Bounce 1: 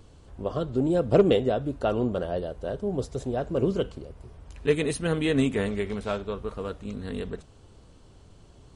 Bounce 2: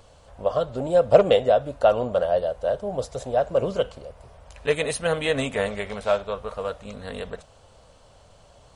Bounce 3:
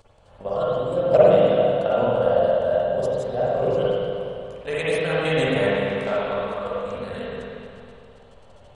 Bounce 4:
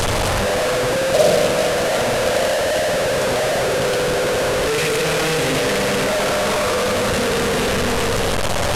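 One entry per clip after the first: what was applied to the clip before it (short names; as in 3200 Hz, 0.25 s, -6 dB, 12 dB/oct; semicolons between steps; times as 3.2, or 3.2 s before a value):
resonant low shelf 450 Hz -7.5 dB, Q 3; gain +4.5 dB
level quantiser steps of 13 dB; spring tank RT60 2.5 s, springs 45/50/58 ms, chirp 65 ms, DRR -8.5 dB; gain -1 dB
delta modulation 64 kbps, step -11.5 dBFS; gain -1 dB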